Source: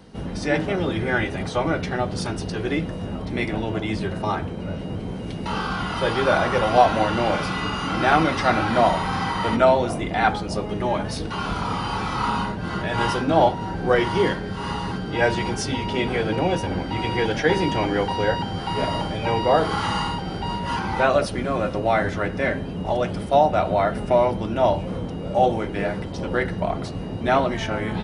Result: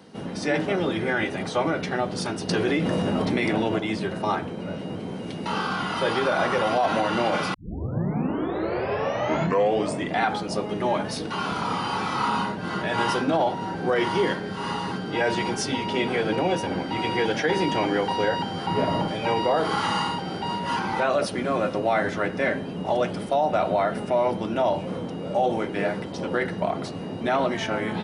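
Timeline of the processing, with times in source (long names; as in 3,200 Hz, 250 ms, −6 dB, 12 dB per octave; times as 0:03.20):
0:02.49–0:03.79: envelope flattener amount 100%
0:07.54: tape start 2.65 s
0:18.66–0:19.08: spectral tilt −2 dB per octave
whole clip: high-pass filter 170 Hz 12 dB per octave; brickwall limiter −13.5 dBFS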